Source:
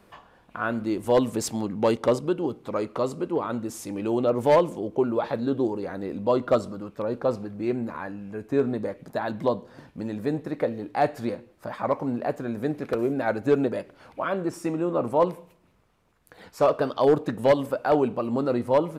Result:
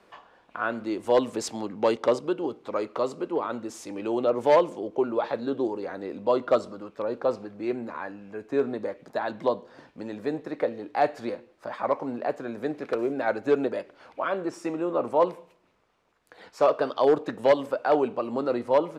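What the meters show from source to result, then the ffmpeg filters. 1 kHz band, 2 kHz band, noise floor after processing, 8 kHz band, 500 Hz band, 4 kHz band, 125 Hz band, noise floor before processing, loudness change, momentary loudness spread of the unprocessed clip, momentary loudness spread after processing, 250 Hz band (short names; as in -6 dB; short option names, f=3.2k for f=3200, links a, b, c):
0.0 dB, 0.0 dB, -63 dBFS, n/a, -0.5 dB, -0.5 dB, -10.5 dB, -60 dBFS, -1.5 dB, 10 LU, 12 LU, -4.0 dB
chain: -filter_complex "[0:a]acrossover=split=280 7700:gain=0.251 1 0.2[a][b][c];[a][b][c]amix=inputs=3:normalize=0"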